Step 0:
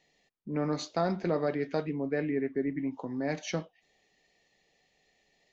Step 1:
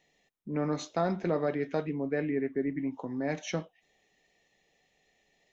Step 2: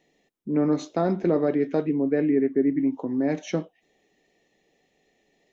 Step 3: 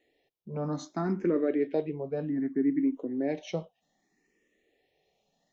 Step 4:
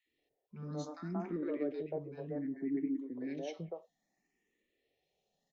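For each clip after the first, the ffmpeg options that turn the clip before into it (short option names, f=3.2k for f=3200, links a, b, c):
-af "bandreject=f=4.6k:w=5.5"
-af "equalizer=f=310:w=0.82:g=10.5"
-filter_complex "[0:a]asplit=2[a][b];[b]afreqshift=0.64[c];[a][c]amix=inputs=2:normalize=1,volume=-3dB"
-filter_complex "[0:a]acrossover=split=370|1300[a][b][c];[a]adelay=60[d];[b]adelay=180[e];[d][e][c]amix=inputs=3:normalize=0,volume=-7dB"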